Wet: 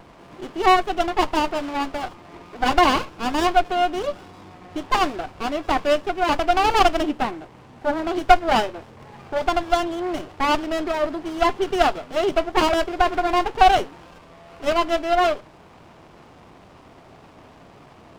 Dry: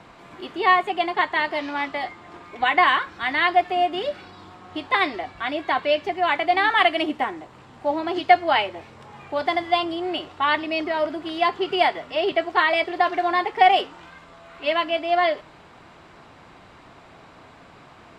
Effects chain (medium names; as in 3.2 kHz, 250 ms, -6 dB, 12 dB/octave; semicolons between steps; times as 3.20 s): wow and flutter 19 cents; sliding maximum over 17 samples; trim +2 dB